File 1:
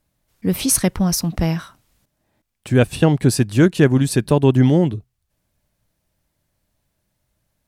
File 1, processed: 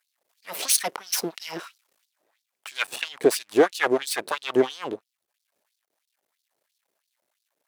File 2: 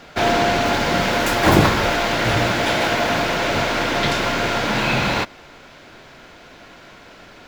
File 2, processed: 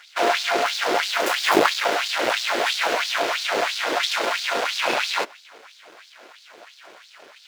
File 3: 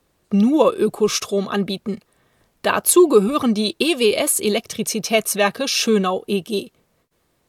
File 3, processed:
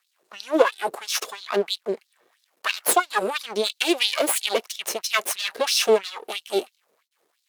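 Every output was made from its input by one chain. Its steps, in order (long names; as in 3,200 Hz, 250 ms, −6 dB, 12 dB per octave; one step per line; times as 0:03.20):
half-wave rectification
auto-filter high-pass sine 3 Hz 380–4,400 Hz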